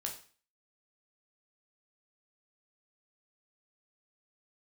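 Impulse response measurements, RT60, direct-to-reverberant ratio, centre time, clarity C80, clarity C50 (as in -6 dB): 0.40 s, 0.5 dB, 19 ms, 13.5 dB, 9.0 dB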